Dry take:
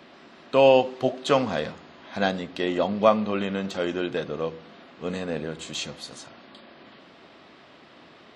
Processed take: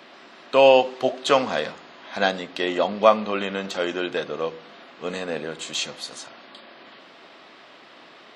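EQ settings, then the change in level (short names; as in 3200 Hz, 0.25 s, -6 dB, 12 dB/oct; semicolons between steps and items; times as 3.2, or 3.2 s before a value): HPF 510 Hz 6 dB/oct; +5.0 dB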